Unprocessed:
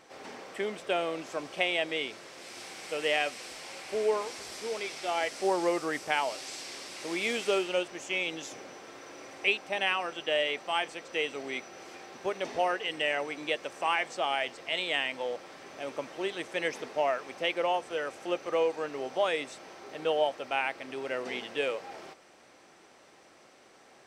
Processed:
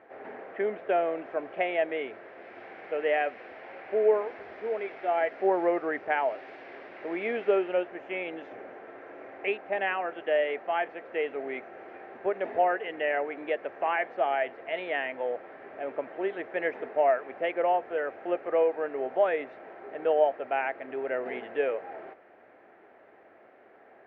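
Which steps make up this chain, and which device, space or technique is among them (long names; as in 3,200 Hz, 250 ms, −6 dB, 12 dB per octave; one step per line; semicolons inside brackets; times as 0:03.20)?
bass cabinet (loudspeaker in its box 73–2,100 Hz, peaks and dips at 150 Hz −10 dB, 420 Hz +5 dB, 670 Hz +7 dB, 1,100 Hz −4 dB, 1,700 Hz +4 dB)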